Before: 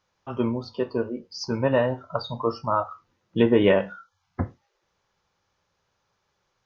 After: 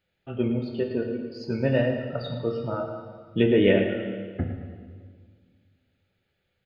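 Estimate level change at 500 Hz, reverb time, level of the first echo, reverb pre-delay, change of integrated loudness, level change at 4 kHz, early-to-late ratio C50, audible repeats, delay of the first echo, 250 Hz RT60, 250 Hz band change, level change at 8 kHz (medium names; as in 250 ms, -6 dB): -1.0 dB, 1.8 s, -10.5 dB, 3 ms, -1.0 dB, -1.5 dB, 5.0 dB, 2, 109 ms, 2.2 s, +0.5 dB, no reading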